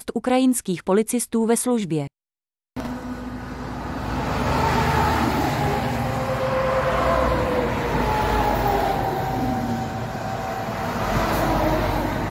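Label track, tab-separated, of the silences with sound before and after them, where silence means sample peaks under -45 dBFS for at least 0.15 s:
2.070000	2.770000	silence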